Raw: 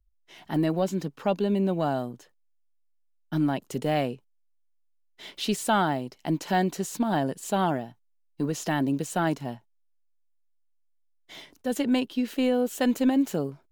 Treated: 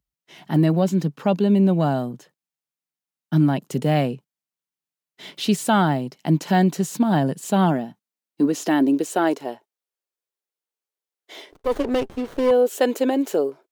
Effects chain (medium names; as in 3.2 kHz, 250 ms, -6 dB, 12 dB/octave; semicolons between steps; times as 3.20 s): high-pass sweep 150 Hz -> 410 Hz, 7.44–9.39 s; 11.52–12.51 s: sliding maximum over 17 samples; trim +3.5 dB